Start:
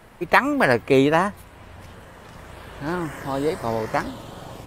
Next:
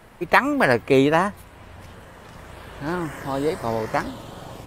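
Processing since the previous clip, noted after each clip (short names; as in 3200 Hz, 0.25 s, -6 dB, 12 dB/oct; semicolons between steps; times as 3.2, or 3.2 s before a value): nothing audible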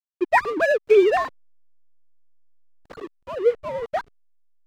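sine-wave speech; backlash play -26 dBFS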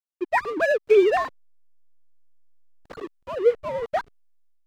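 AGC gain up to 6.5 dB; gain -5.5 dB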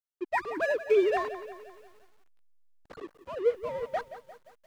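lo-fi delay 0.175 s, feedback 55%, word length 8-bit, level -13 dB; gain -7 dB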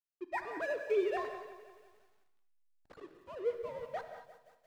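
non-linear reverb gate 0.26 s flat, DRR 7 dB; gain -8.5 dB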